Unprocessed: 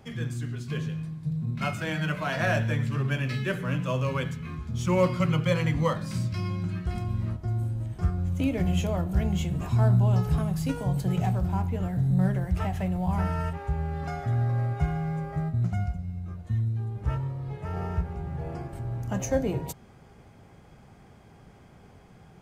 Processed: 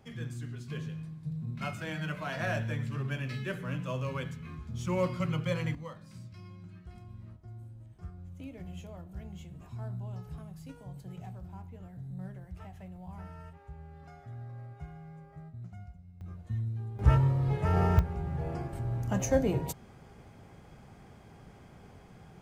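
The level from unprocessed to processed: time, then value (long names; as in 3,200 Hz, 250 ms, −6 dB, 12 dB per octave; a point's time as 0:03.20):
−7 dB
from 0:05.75 −18 dB
from 0:16.21 −6.5 dB
from 0:16.99 +6 dB
from 0:17.99 −0.5 dB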